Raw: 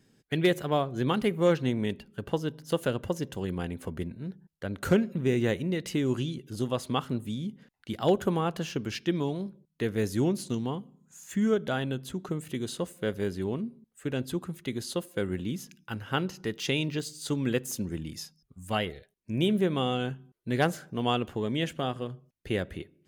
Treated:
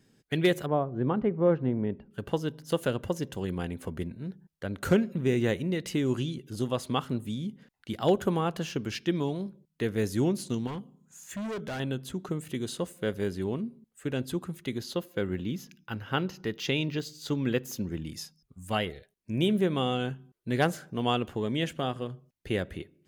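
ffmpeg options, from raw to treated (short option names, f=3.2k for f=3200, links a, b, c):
-filter_complex "[0:a]asettb=1/sr,asplit=3[a][b][c];[a]atrim=end=0.664[d];[b]atrim=start=0.66:end=2.11,asetpts=PTS-STARTPTS,afade=t=in:d=0.004:c=qsin,afade=t=out:st=1.446:d=0.004:c=qsin,lowpass=1.1k[e];[c]atrim=start=2.106[f];[d][e]acrossfade=d=0.004:c1=hsin:c2=qsin[g];[g][f]acrossfade=d=0.004:c1=qsin:c2=hsin,asettb=1/sr,asplit=3[h][i][j];[h]atrim=end=10.674[k];[i]atrim=start=10.67:end=11.8,asetpts=PTS-STARTPTS,afade=t=in:d=0.004:c=qsin,afade=t=out:st=1.126:d=0.004:c=qsin,volume=32.5dB,asoftclip=hard,volume=-32.5dB[l];[j]atrim=start=11.796[m];[k][l]acrossfade=d=0.004:c1=hsin:c2=qsin[n];[n][m]acrossfade=d=0.004:c1=qsin:c2=hsin,asettb=1/sr,asplit=3[o][p][q];[o]atrim=end=14.784[r];[p]atrim=start=14.78:end=18.05,asetpts=PTS-STARTPTS,afade=t=in:d=0.004:c=qsin,afade=t=out:st=3.266:d=0.004:c=qsin,equalizer=f=8.9k:w=2:g=-13[s];[q]atrim=start=18.046[t];[r][s]acrossfade=d=0.004:c1=hsin:c2=qsin[u];[u][t]acrossfade=d=0.004:c1=qsin:c2=hsin"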